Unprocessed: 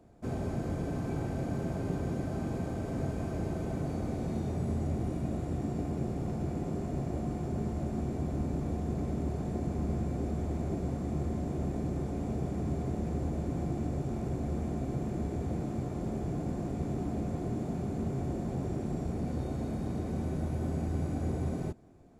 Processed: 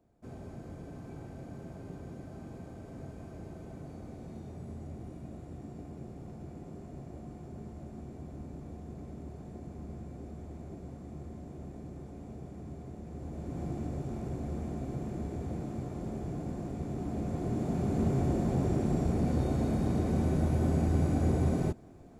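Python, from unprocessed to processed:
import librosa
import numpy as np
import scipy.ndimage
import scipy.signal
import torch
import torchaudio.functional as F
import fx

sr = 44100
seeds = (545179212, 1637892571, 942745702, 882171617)

y = fx.gain(x, sr, db=fx.line((13.06, -11.0), (13.66, -3.0), (16.89, -3.0), (18.03, 5.0)))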